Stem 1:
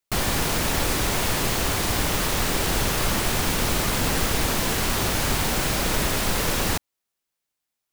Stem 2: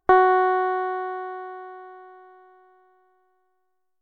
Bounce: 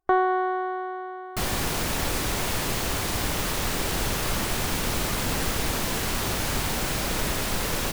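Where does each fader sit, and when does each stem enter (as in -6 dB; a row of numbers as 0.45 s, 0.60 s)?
-3.5 dB, -5.5 dB; 1.25 s, 0.00 s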